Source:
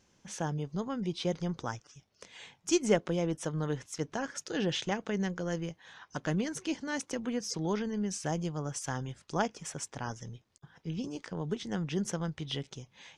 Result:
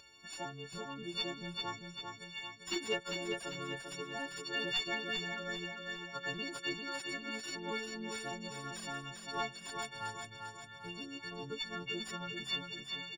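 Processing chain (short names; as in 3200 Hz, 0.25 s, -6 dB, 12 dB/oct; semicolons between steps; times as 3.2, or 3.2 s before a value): frequency quantiser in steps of 4 st; pre-emphasis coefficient 0.9; notch 5700 Hz, Q 8.7; upward compressor, threshold -47 dBFS; flange 1.3 Hz, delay 2 ms, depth 1.3 ms, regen +18%; soft clip -34.5 dBFS, distortion -8 dB; air absorption 270 m; feedback echo 0.396 s, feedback 52%, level -5 dB; gain +13 dB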